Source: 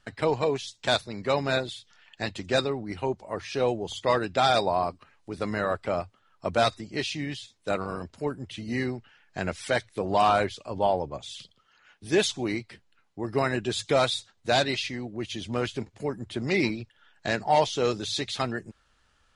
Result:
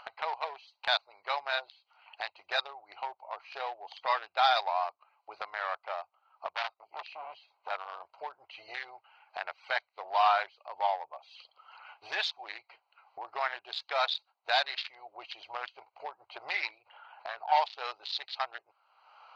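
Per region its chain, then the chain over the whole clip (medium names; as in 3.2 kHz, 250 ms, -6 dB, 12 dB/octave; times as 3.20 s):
6.53–7.71 s: treble shelf 3.3 kHz -11 dB + transformer saturation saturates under 2.9 kHz
16.78–17.52 s: valve stage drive 22 dB, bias 0.75 + distance through air 210 m + decay stretcher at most 50 dB/s
whole clip: local Wiener filter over 25 samples; elliptic band-pass 780–4600 Hz, stop band 50 dB; upward compressor, threshold -33 dBFS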